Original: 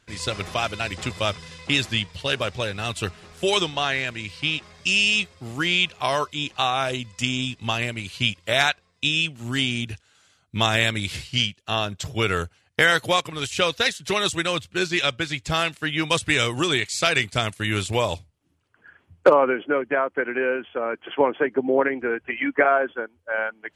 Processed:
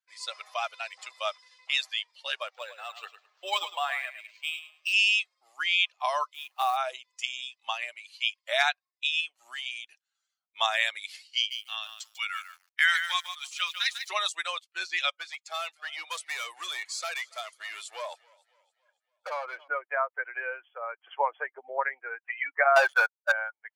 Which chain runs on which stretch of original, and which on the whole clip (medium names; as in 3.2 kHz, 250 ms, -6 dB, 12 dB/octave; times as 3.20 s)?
2.47–4.93 s: feedback delay 106 ms, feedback 33%, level -8 dB + decimation joined by straight lines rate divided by 4×
6.34–6.77 s: peaking EQ 6 kHz -11.5 dB 1.2 oct + companded quantiser 4-bit
9.20–9.66 s: high-pass 180 Hz + waveshaping leveller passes 1 + compression 10:1, threshold -22 dBFS
11.36–14.09 s: high-pass 1.4 kHz + bit-crushed delay 147 ms, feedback 35%, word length 6-bit, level -5 dB
15.10–19.68 s: expander -43 dBFS + hard clipper -22 dBFS + modulated delay 279 ms, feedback 59%, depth 93 cents, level -16.5 dB
22.76–23.32 s: bass shelf 300 Hz -9.5 dB + waveshaping leveller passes 5
whole clip: expander on every frequency bin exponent 1.5; steep high-pass 630 Hz 36 dB/octave; treble shelf 5.8 kHz -8.5 dB